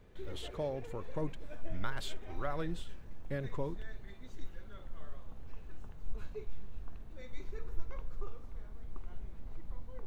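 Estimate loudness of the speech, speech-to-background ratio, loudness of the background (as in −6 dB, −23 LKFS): −42.0 LKFS, 9.0 dB, −51.0 LKFS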